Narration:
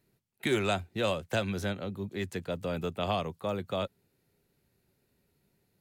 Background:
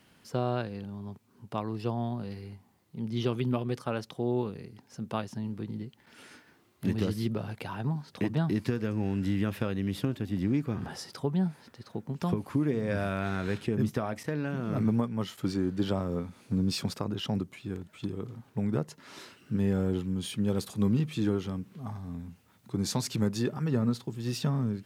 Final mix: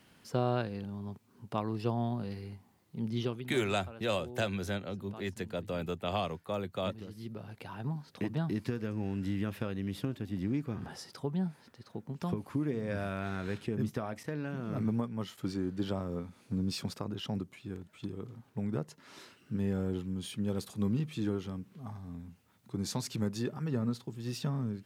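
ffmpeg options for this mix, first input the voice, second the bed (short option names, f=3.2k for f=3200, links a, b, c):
-filter_complex "[0:a]adelay=3050,volume=-2.5dB[a];[1:a]volume=11dB,afade=t=out:st=3.08:d=0.4:silence=0.158489,afade=t=in:st=7.07:d=0.83:silence=0.266073[b];[a][b]amix=inputs=2:normalize=0"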